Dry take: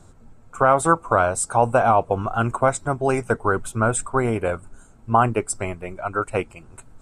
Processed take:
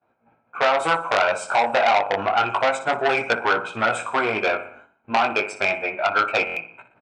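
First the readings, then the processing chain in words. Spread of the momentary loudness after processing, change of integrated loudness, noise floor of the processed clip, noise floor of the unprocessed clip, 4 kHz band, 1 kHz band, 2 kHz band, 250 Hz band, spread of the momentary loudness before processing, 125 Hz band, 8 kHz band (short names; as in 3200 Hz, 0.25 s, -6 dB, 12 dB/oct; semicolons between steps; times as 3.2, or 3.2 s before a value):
6 LU, 0.0 dB, -67 dBFS, -50 dBFS, +14.5 dB, 0.0 dB, +6.0 dB, -7.0 dB, 10 LU, -15.5 dB, -11.0 dB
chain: expander -37 dBFS; low-pass opened by the level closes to 1800 Hz, open at -14.5 dBFS; bell 2500 Hz +13 dB 0.27 oct; comb 1.3 ms, depth 36%; in parallel at -2 dB: limiter -12 dBFS, peak gain reduction 8.5 dB; on the sum: compressor, threshold -14 dBFS, peak gain reduction 7 dB; chorus 0.29 Hz, delay 17 ms, depth 4.1 ms; BPF 380–3600 Hz; on a send: feedback echo 60 ms, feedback 49%, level -12 dB; on the sum: stuck buffer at 6.45, samples 1024, times 4; core saturation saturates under 2600 Hz; gain +5.5 dB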